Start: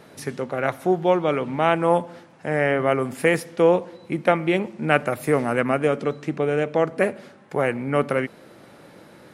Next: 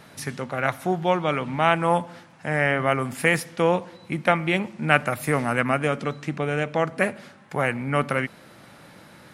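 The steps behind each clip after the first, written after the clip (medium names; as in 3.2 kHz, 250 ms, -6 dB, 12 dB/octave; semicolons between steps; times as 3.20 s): peaking EQ 410 Hz -9.5 dB 1.4 oct; trim +3 dB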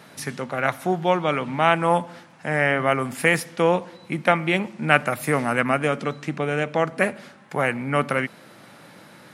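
high-pass 130 Hz; trim +1.5 dB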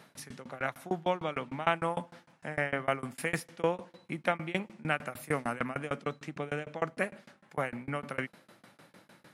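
tremolo saw down 6.6 Hz, depth 100%; trim -7 dB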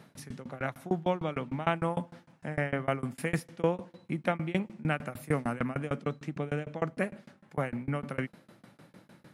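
bass shelf 380 Hz +11 dB; trim -3 dB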